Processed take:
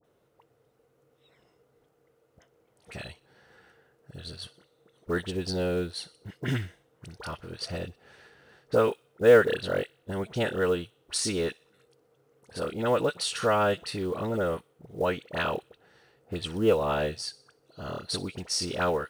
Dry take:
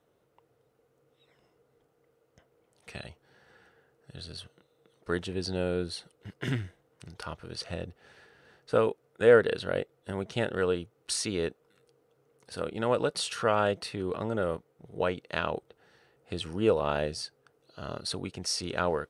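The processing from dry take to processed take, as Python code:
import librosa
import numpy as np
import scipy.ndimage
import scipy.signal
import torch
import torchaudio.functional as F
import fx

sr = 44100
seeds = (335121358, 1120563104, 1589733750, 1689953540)

p1 = fx.dispersion(x, sr, late='highs', ms=43.0, hz=1300.0)
p2 = fx.quant_float(p1, sr, bits=4)
p3 = p2 + fx.echo_wet_highpass(p2, sr, ms=61, feedback_pct=49, hz=2900.0, wet_db=-18.5, dry=0)
y = F.gain(torch.from_numpy(p3), 2.0).numpy()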